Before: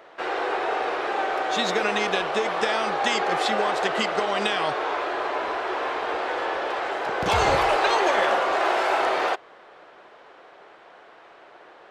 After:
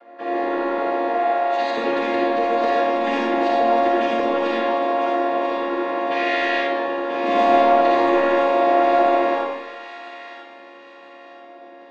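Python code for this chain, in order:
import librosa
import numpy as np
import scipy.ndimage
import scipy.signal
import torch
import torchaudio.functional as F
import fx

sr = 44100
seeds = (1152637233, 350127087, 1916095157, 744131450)

y = fx.chord_vocoder(x, sr, chord='minor triad', root=58)
y = fx.highpass(y, sr, hz=520.0, slope=12, at=(1.08, 1.78))
y = fx.high_shelf_res(y, sr, hz=1600.0, db=13.5, q=1.5, at=(6.1, 6.59), fade=0.02)
y = 10.0 ** (-14.0 / 20.0) * np.tanh(y / 10.0 ** (-14.0 / 20.0))
y = fx.air_absorb(y, sr, metres=90.0)
y = fx.echo_wet_highpass(y, sr, ms=990, feedback_pct=36, hz=2100.0, wet_db=-6.0)
y = fx.rev_freeverb(y, sr, rt60_s=1.2, hf_ratio=0.75, predelay_ms=15, drr_db=-5.0)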